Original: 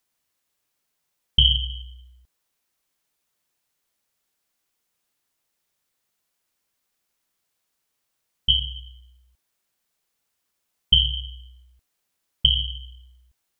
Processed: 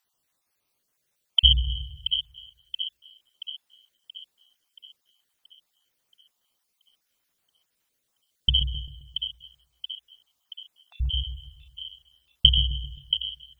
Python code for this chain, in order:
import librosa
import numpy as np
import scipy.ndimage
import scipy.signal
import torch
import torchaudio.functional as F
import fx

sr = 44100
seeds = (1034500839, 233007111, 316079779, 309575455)

y = fx.spec_dropout(x, sr, seeds[0], share_pct=38)
y = fx.echo_split(y, sr, split_hz=2100.0, low_ms=132, high_ms=678, feedback_pct=52, wet_db=-8)
y = y * librosa.db_to_amplitude(2.0)